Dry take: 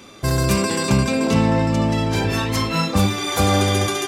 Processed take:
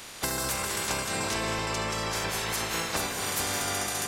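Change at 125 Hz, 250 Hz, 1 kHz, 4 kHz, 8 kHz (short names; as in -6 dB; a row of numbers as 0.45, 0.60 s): -19.0, -18.5, -8.5, -6.5, -2.0 dB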